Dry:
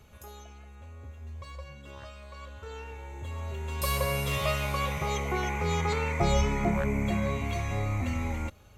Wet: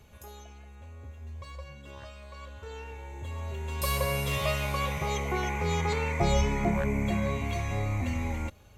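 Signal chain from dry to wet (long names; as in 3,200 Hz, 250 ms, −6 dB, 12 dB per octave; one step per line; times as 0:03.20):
notch filter 1,300 Hz, Q 9.8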